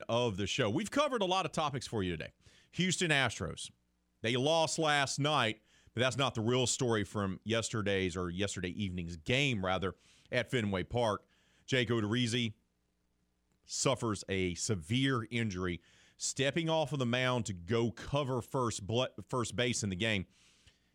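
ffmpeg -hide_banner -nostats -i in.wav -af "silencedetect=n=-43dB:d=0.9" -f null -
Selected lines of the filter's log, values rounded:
silence_start: 12.51
silence_end: 13.70 | silence_duration: 1.19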